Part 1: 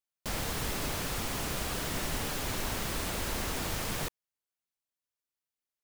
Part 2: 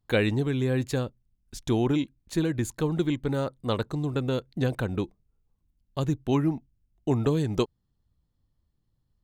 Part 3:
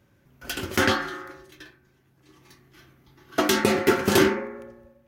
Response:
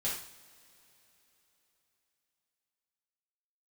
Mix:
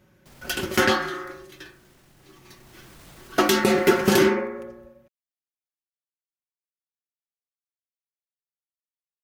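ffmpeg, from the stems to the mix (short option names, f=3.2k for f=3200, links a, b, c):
-filter_complex "[0:a]alimiter=level_in=5.5dB:limit=-24dB:level=0:latency=1:release=12,volume=-5.5dB,volume=-3.5dB,afade=t=out:st=0.81:d=0.31:silence=0.446684,afade=t=in:st=2.44:d=0.57:silence=0.316228[a];[2:a]aecho=1:1:5.4:0.45,volume=2.5dB[b];[a][b]amix=inputs=2:normalize=0,alimiter=limit=-6.5dB:level=0:latency=1:release=212"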